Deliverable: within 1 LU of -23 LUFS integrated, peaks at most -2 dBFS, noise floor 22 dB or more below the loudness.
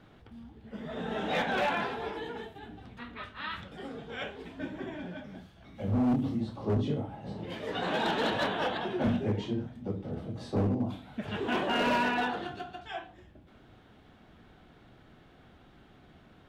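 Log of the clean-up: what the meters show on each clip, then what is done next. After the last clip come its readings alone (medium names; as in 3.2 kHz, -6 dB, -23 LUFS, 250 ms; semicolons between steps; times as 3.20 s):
clipped samples 1.3%; clipping level -23.0 dBFS; loudness -32.5 LUFS; peak level -23.0 dBFS; loudness target -23.0 LUFS
-> clip repair -23 dBFS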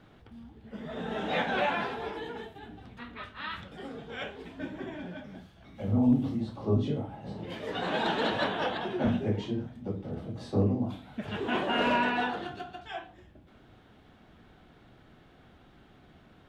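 clipped samples 0.0%; loudness -31.5 LUFS; peak level -14.0 dBFS; loudness target -23.0 LUFS
-> trim +8.5 dB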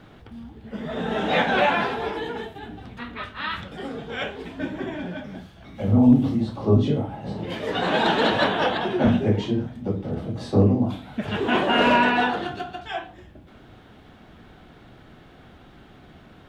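loudness -23.0 LUFS; peak level -5.5 dBFS; noise floor -50 dBFS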